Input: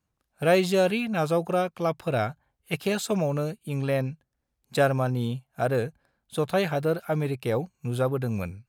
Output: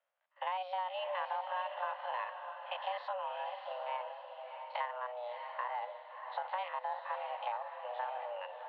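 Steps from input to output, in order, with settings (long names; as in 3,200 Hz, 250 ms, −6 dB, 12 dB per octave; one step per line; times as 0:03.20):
spectrum averaged block by block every 50 ms
downward compressor 6 to 1, threshold −34 dBFS, peak gain reduction 16 dB
feedback delay with all-pass diffusion 661 ms, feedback 43%, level −6.5 dB
single-sideband voice off tune +370 Hz 200–3,000 Hz
level −1 dB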